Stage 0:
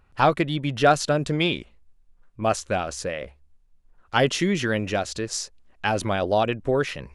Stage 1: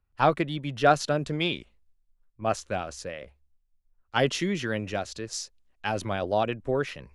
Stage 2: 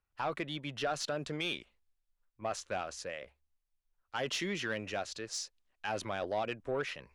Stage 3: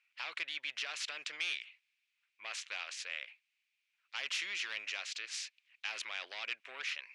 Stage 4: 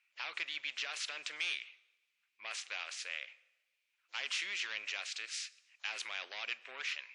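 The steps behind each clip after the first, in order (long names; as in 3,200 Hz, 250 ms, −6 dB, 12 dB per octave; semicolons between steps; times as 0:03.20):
dynamic equaliser 8,600 Hz, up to −4 dB, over −45 dBFS, Q 1.9; multiband upward and downward expander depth 40%; level −5 dB
brickwall limiter −17.5 dBFS, peak gain reduction 11.5 dB; mid-hump overdrive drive 10 dB, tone 6,600 Hz, clips at −17.5 dBFS; level −7 dB
four-pole ladder band-pass 2,600 Hz, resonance 70%; every bin compressed towards the loudest bin 2 to 1; level +6 dB
convolution reverb RT60 1.1 s, pre-delay 6 ms, DRR 16 dB; WMA 64 kbit/s 48,000 Hz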